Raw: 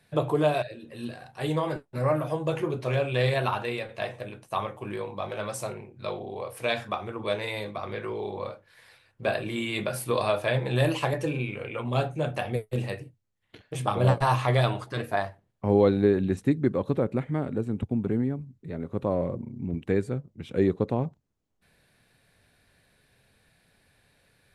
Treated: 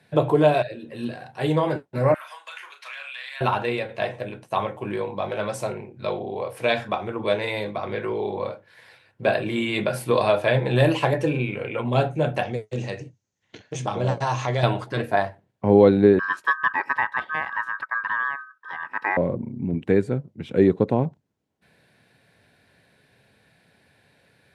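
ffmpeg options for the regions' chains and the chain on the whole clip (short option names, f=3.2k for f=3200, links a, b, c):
-filter_complex "[0:a]asettb=1/sr,asplit=3[a][b][c];[a]atrim=end=2.144[d];[b]atrim=start=2.14:end=3.41,asetpts=PTS-STARTPTS,afade=t=in:d=0.004:c=qsin,afade=t=out:st=1.266:d=0.004:c=qsin,highpass=f=1.3k:w=0.5412,highpass=f=1.3k:w=1.3066,acompressor=threshold=-38dB:ratio=4:attack=3.2:release=140:knee=1:detection=peak,asplit=2[e][f];[f]adelay=36,volume=-8dB[g];[e][g]amix=inputs=2:normalize=0,atrim=end_sample=56007[h];[c]atrim=start=3.406[i];[d][h]acrossfade=d=0.004:c1=hsin:c2=qsin[j];[j][i]acrossfade=d=0.004:c1=qsin:c2=hsin,asettb=1/sr,asplit=3[k][l][m];[k]atrim=end=12.434[n];[l]atrim=start=12.43:end=14.63,asetpts=PTS-STARTPTS,afade=t=in:d=0.004:c=qsin,afade=t=out:st=2.196:d=0.004:c=qsin,lowpass=f=6.4k:t=q:w=6.9,acompressor=threshold=-37dB:ratio=1.5:attack=3.2:release=140:knee=1:detection=peak[o];[m]atrim=start=14.626[p];[n][o]acrossfade=d=0.004:c1=hsin:c2=qsin[q];[q][p]acrossfade=d=0.004:c1=qsin:c2=hsin,asettb=1/sr,asplit=3[r][s][t];[r]atrim=end=16.194[u];[s]atrim=start=16.19:end=19.17,asetpts=PTS-STARTPTS,afade=t=in:d=0.004:c=qsin,afade=t=out:st=2.976:d=0.004:c=qsin,highpass=130,aeval=exprs='val(0)*sin(2*PI*1400*n/s)':c=same[v];[t]atrim=start=19.166[w];[u][v]acrossfade=d=0.004:c1=hsin:c2=qsin[x];[x][w]acrossfade=d=0.004:c1=qsin:c2=hsin,highpass=110,aemphasis=mode=reproduction:type=cd,bandreject=f=1.2k:w=9.9,volume=6dB"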